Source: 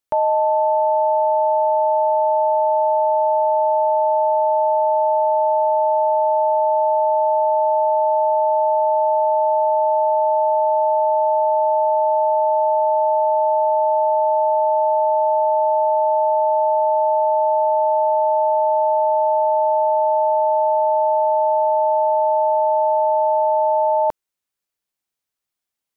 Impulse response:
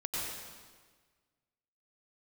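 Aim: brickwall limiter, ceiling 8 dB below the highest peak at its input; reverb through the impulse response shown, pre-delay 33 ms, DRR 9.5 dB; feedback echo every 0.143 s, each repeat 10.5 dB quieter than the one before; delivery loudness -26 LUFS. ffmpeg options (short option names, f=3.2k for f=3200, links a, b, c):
-filter_complex "[0:a]alimiter=limit=-19dB:level=0:latency=1,aecho=1:1:143|286|429:0.299|0.0896|0.0269,asplit=2[a][b];[1:a]atrim=start_sample=2205,adelay=33[c];[b][c]afir=irnorm=-1:irlink=0,volume=-14dB[d];[a][d]amix=inputs=2:normalize=0,volume=-1.5dB"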